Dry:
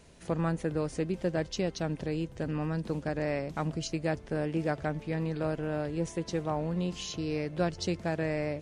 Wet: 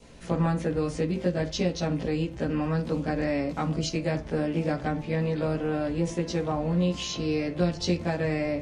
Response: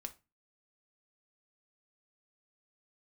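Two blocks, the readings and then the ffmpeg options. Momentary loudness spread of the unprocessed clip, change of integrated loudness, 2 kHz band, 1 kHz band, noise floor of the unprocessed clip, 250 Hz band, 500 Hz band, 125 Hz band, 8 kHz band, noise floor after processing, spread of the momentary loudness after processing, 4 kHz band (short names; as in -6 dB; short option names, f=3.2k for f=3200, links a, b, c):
3 LU, +4.5 dB, +3.5 dB, +3.5 dB, -49 dBFS, +5.5 dB, +4.0 dB, +5.0 dB, +4.0 dB, -39 dBFS, 3 LU, +6.0 dB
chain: -filter_complex "[0:a]adynamicequalizer=threshold=0.00112:dfrequency=1600:dqfactor=6.7:tfrequency=1600:tqfactor=6.7:attack=5:release=100:ratio=0.375:range=2:mode=cutabove:tftype=bell,asplit=2[a][b];[1:a]atrim=start_sample=2205,lowpass=5.6k,adelay=17[c];[b][c]afir=irnorm=-1:irlink=0,volume=9.5dB[d];[a][d]amix=inputs=2:normalize=0,acrossover=split=290|3000[e][f][g];[f]acompressor=threshold=-27dB:ratio=6[h];[e][h][g]amix=inputs=3:normalize=0"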